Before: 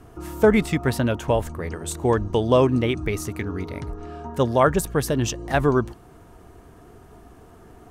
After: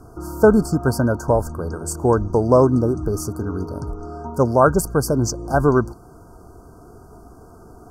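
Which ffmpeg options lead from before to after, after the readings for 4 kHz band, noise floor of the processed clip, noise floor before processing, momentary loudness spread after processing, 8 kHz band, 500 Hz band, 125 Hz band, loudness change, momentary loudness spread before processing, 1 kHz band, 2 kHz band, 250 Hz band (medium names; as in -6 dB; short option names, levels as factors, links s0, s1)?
-5.0 dB, -45 dBFS, -48 dBFS, 14 LU, +3.5 dB, +3.5 dB, +3.5 dB, +3.5 dB, 14 LU, +3.5 dB, -1.0 dB, +3.5 dB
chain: -af "afftfilt=real='re*(1-between(b*sr/4096,1600,4400))':imag='im*(1-between(b*sr/4096,1600,4400))':win_size=4096:overlap=0.75,volume=1.5"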